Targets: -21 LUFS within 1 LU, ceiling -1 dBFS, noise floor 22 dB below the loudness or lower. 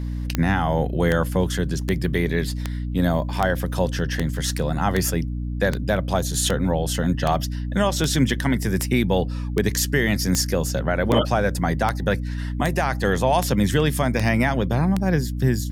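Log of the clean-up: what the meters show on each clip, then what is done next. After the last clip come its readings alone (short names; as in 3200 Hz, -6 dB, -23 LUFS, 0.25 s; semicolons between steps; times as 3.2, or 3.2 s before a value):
clicks 20; hum 60 Hz; harmonics up to 300 Hz; hum level -25 dBFS; loudness -22.5 LUFS; peak -4.5 dBFS; loudness target -21.0 LUFS
-> de-click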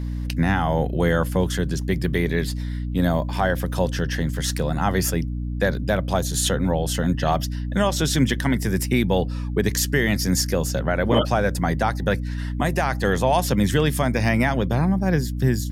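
clicks 0; hum 60 Hz; harmonics up to 300 Hz; hum level -25 dBFS
-> notches 60/120/180/240/300 Hz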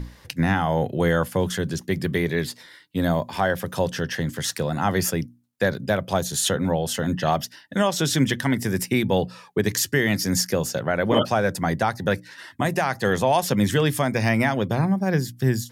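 hum none; loudness -23.5 LUFS; peak -7.5 dBFS; loudness target -21.0 LUFS
-> gain +2.5 dB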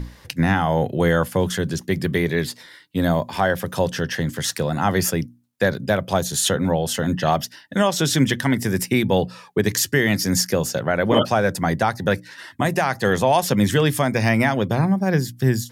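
loudness -21.0 LUFS; peak -5.0 dBFS; noise floor -49 dBFS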